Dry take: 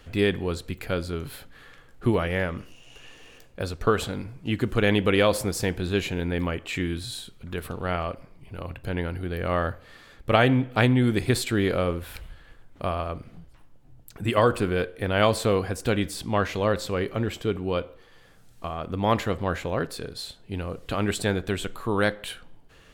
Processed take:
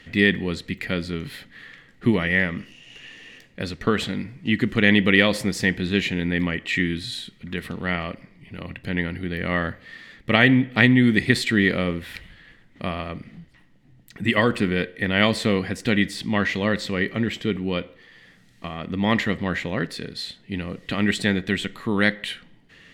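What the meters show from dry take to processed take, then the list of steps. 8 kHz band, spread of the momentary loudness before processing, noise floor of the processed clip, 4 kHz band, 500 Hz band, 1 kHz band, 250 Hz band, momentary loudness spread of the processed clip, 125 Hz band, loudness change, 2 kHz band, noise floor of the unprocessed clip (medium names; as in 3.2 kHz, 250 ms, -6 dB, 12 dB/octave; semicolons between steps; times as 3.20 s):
-1.5 dB, 15 LU, -54 dBFS, +5.5 dB, -1.5 dB, -2.0 dB, +5.5 dB, 18 LU, +1.0 dB, +3.5 dB, +8.5 dB, -53 dBFS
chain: peaking EQ 3.3 kHz +14 dB 2.7 oct; small resonant body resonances 200/1900 Hz, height 16 dB, ringing for 20 ms; trim -9 dB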